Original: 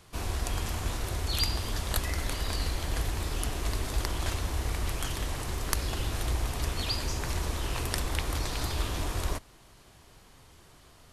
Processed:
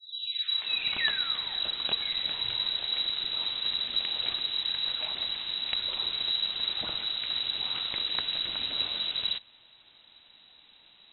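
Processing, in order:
turntable start at the beginning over 2.38 s
voice inversion scrambler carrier 3,900 Hz
level −2.5 dB

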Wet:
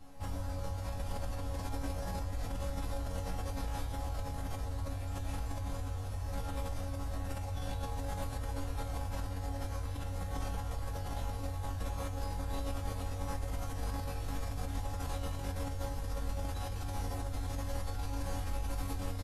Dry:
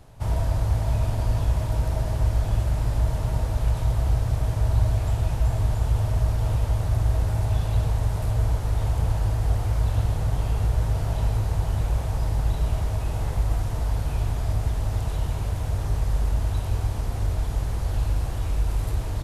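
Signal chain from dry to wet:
resonators tuned to a chord F#2 fifth, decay 0.39 s
in parallel at +2 dB: compressor whose output falls as the input rises −43 dBFS, ratio −0.5
on the sum: comb filter 3.8 ms, depth 75%
level −2 dB

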